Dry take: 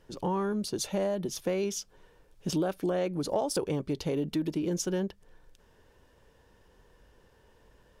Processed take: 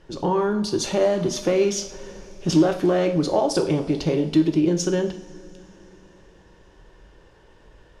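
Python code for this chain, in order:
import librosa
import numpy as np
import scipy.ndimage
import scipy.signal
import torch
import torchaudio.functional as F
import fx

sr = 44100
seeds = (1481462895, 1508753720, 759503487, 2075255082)

y = fx.law_mismatch(x, sr, coded='mu', at=(0.83, 3.17))
y = scipy.signal.sosfilt(scipy.signal.butter(2, 6400.0, 'lowpass', fs=sr, output='sos'), y)
y = fx.rev_double_slope(y, sr, seeds[0], early_s=0.46, late_s=4.1, knee_db=-21, drr_db=4.5)
y = y * 10.0 ** (7.5 / 20.0)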